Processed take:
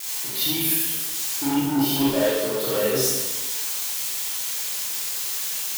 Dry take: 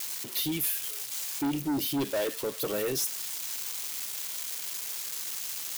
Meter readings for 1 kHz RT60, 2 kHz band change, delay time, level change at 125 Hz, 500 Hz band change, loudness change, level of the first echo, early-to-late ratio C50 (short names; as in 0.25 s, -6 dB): 1.1 s, +8.0 dB, none, +8.0 dB, +8.5 dB, +8.0 dB, none, -3.0 dB